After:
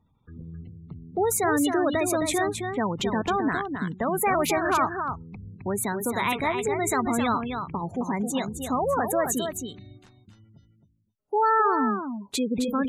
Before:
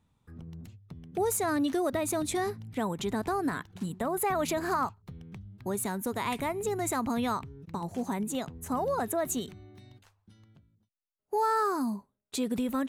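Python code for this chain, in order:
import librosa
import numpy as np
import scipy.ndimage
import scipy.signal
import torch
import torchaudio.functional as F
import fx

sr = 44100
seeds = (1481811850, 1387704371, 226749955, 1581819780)

p1 = fx.spec_gate(x, sr, threshold_db=-25, keep='strong')
p2 = fx.dynamic_eq(p1, sr, hz=2500.0, q=0.77, threshold_db=-48.0, ratio=4.0, max_db=6)
p3 = p2 + fx.echo_single(p2, sr, ms=265, db=-6.5, dry=0)
y = F.gain(torch.from_numpy(p3), 4.0).numpy()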